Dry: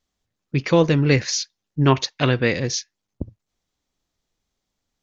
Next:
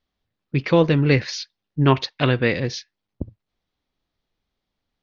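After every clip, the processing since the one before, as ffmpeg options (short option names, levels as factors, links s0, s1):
-af "lowpass=f=4500:w=0.5412,lowpass=f=4500:w=1.3066"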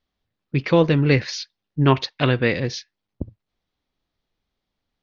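-af anull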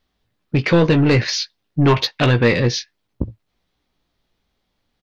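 -filter_complex "[0:a]asplit=2[s0][s1];[s1]alimiter=limit=0.316:level=0:latency=1:release=86,volume=1.41[s2];[s0][s2]amix=inputs=2:normalize=0,asoftclip=type=tanh:threshold=0.447,asplit=2[s3][s4];[s4]adelay=17,volume=0.398[s5];[s3][s5]amix=inputs=2:normalize=0"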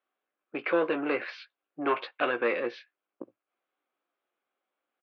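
-af "highpass=f=410:w=0.5412,highpass=f=410:w=1.3066,equalizer=f=440:t=q:w=4:g=-8,equalizer=f=630:t=q:w=4:g=-5,equalizer=f=910:t=q:w=4:g=-9,equalizer=f=1900:t=q:w=4:g=-10,lowpass=f=2200:w=0.5412,lowpass=f=2200:w=1.3066,volume=0.75"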